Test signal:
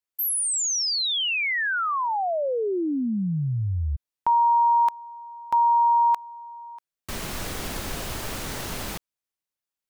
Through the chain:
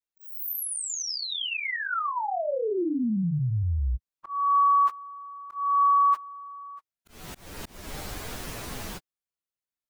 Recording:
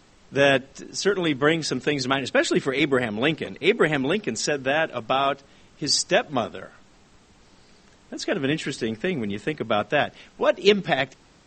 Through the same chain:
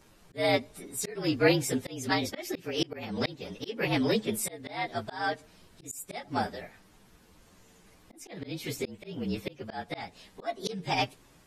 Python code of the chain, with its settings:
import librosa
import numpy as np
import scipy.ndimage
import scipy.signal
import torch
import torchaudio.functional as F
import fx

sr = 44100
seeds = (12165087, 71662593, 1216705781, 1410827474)

y = fx.partial_stretch(x, sr, pct=114)
y = fx.auto_swell(y, sr, attack_ms=315.0)